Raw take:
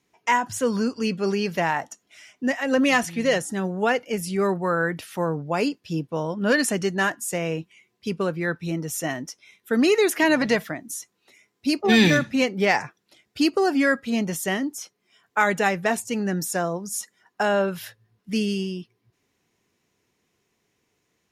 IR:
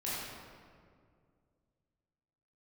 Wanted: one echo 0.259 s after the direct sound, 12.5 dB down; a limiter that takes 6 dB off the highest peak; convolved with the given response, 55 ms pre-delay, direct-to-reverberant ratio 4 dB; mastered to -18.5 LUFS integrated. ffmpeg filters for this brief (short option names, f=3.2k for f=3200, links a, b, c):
-filter_complex "[0:a]alimiter=limit=-12dB:level=0:latency=1,aecho=1:1:259:0.237,asplit=2[a][b];[1:a]atrim=start_sample=2205,adelay=55[c];[b][c]afir=irnorm=-1:irlink=0,volume=-8.5dB[d];[a][d]amix=inputs=2:normalize=0,volume=4.5dB"